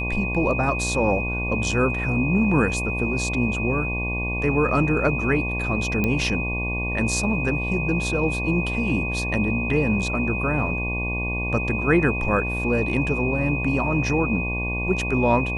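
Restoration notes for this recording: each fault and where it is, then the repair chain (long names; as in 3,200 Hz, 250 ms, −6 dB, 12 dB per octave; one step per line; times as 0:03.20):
mains buzz 60 Hz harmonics 19 −28 dBFS
whistle 2,500 Hz −27 dBFS
0:06.04: click −10 dBFS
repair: click removal
hum removal 60 Hz, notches 19
notch filter 2,500 Hz, Q 30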